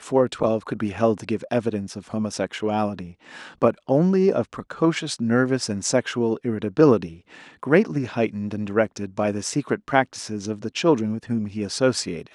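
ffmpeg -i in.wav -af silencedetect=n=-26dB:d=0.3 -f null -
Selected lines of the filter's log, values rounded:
silence_start: 3.01
silence_end: 3.62 | silence_duration: 0.60
silence_start: 7.06
silence_end: 7.63 | silence_duration: 0.57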